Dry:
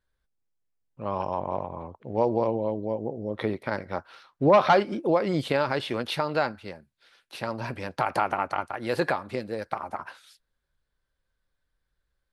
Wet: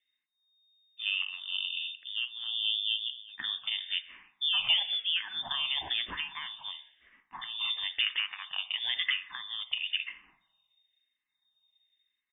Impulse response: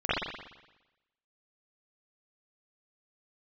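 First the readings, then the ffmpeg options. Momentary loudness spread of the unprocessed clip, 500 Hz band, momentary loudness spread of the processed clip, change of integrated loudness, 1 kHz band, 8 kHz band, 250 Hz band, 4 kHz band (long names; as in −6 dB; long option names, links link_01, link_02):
14 LU, −36.0 dB, 11 LU, −3.5 dB, −20.0 dB, can't be measured, below −30 dB, +13.0 dB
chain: -filter_complex "[0:a]aecho=1:1:1.1:0.55,alimiter=limit=-16dB:level=0:latency=1:release=189,asplit=2[link_01][link_02];[1:a]atrim=start_sample=2205,highshelf=frequency=2000:gain=10[link_03];[link_02][link_03]afir=irnorm=-1:irlink=0,volume=-31dB[link_04];[link_01][link_04]amix=inputs=2:normalize=0,lowpass=frequency=3100:width_type=q:width=0.5098,lowpass=frequency=3100:width_type=q:width=0.6013,lowpass=frequency=3100:width_type=q:width=0.9,lowpass=frequency=3100:width_type=q:width=2.563,afreqshift=-3700,asplit=2[link_05][link_06];[link_06]afreqshift=-1[link_07];[link_05][link_07]amix=inputs=2:normalize=1"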